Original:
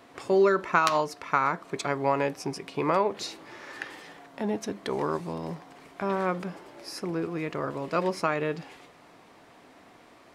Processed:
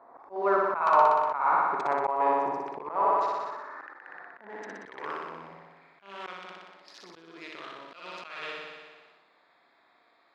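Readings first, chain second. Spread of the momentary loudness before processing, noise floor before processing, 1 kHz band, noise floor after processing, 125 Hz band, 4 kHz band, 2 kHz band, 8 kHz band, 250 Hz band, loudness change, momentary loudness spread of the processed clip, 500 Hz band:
17 LU, -55 dBFS, +3.5 dB, -65 dBFS, -19.0 dB, -7.5 dB, -3.5 dB, under -15 dB, -11.5 dB, +2.0 dB, 21 LU, -4.0 dB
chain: local Wiener filter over 15 samples; flutter echo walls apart 10.4 m, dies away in 1.3 s; band-pass sweep 900 Hz -> 3.3 kHz, 2.95–6.42 s; slow attack 230 ms; decay stretcher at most 37 dB/s; trim +6.5 dB

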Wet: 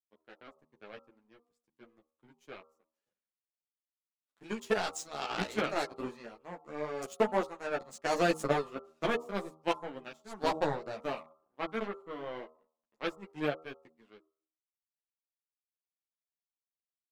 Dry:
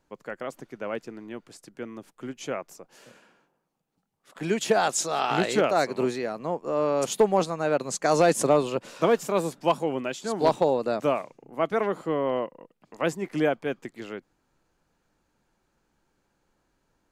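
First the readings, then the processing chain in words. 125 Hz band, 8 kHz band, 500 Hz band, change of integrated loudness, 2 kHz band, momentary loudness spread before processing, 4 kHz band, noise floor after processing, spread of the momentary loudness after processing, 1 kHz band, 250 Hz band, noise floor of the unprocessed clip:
-10.0 dB, -15.0 dB, -11.0 dB, -9.0 dB, -5.5 dB, 17 LU, -7.0 dB, under -85 dBFS, 18 LU, -9.0 dB, -10.0 dB, -74 dBFS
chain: power-law waveshaper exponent 2; de-hum 79.28 Hz, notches 17; three-phase chorus; trim -1 dB

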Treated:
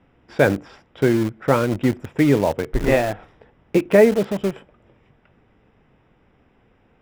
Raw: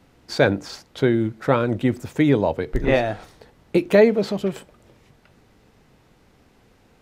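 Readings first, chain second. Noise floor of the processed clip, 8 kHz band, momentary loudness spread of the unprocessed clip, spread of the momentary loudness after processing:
-59 dBFS, no reading, 13 LU, 12 LU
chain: Savitzky-Golay filter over 25 samples; in parallel at -7 dB: bit crusher 4-bit; on the sum: trim -2 dB

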